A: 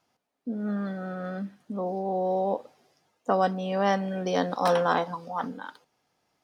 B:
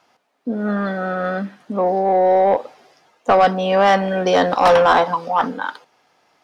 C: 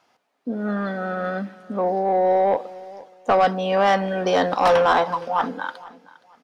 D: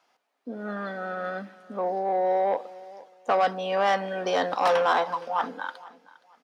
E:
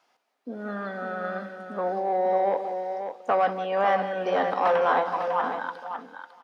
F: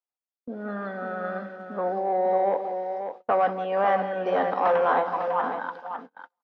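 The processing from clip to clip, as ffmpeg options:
ffmpeg -i in.wav -filter_complex "[0:a]asplit=2[link_01][link_02];[link_02]highpass=frequency=720:poles=1,volume=16dB,asoftclip=type=tanh:threshold=-10.5dB[link_03];[link_01][link_03]amix=inputs=2:normalize=0,lowpass=frequency=2600:poles=1,volume=-6dB,volume=7dB" out.wav
ffmpeg -i in.wav -af "aecho=1:1:469|938:0.1|0.025,volume=-4dB" out.wav
ffmpeg -i in.wav -af "highpass=frequency=390:poles=1,volume=-4dB" out.wav
ffmpeg -i in.wav -filter_complex "[0:a]acrossover=split=2600[link_01][link_02];[link_02]acompressor=threshold=-53dB:ratio=4:attack=1:release=60[link_03];[link_01][link_03]amix=inputs=2:normalize=0,asplit=2[link_04][link_05];[link_05]aecho=0:1:174|550:0.237|0.398[link_06];[link_04][link_06]amix=inputs=2:normalize=0" out.wav
ffmpeg -i in.wav -af "agate=range=-33dB:threshold=-40dB:ratio=16:detection=peak,aemphasis=mode=reproduction:type=75fm" out.wav

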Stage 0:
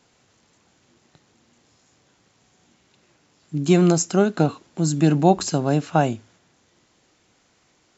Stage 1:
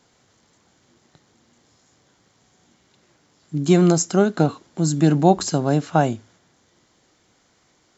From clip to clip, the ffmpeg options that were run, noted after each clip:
ffmpeg -i in.wav -af "equalizer=frequency=2600:width=7.3:gain=-7,volume=1dB" out.wav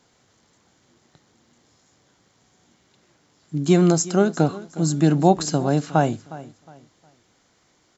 ffmpeg -i in.wav -af "aecho=1:1:361|722|1083:0.126|0.0378|0.0113,volume=-1dB" out.wav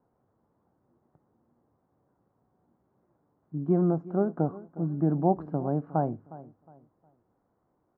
ffmpeg -i in.wav -af "lowpass=frequency=1100:width=0.5412,lowpass=frequency=1100:width=1.3066,volume=-8dB" out.wav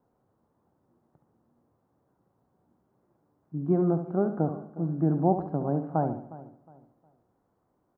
ffmpeg -i in.wav -af "aecho=1:1:71|142|213|284|355:0.335|0.147|0.0648|0.0285|0.0126" out.wav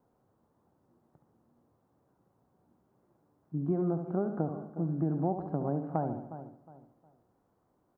ffmpeg -i in.wav -af "acompressor=threshold=-28dB:ratio=3" out.wav

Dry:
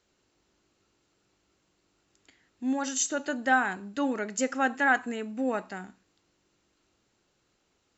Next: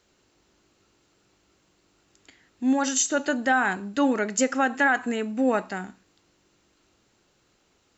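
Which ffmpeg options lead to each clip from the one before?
ffmpeg -i in.wav -af "alimiter=limit=-18.5dB:level=0:latency=1:release=143,volume=6.5dB" out.wav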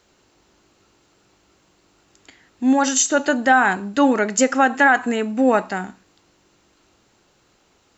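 ffmpeg -i in.wav -af "equalizer=frequency=870:width=1.3:gain=3,volume=5.5dB" out.wav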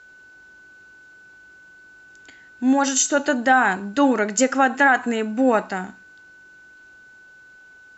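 ffmpeg -i in.wav -af "aeval=exprs='val(0)+0.00631*sin(2*PI*1500*n/s)':channel_layout=same,volume=-1.5dB" out.wav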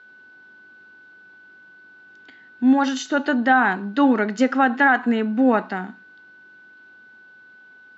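ffmpeg -i in.wav -af "highpass=150,equalizer=frequency=230:width_type=q:width=4:gain=6,equalizer=frequency=580:width_type=q:width=4:gain=-4,equalizer=frequency=2500:width_type=q:width=4:gain=-4,lowpass=frequency=4200:width=0.5412,lowpass=frequency=4200:width=1.3066" out.wav

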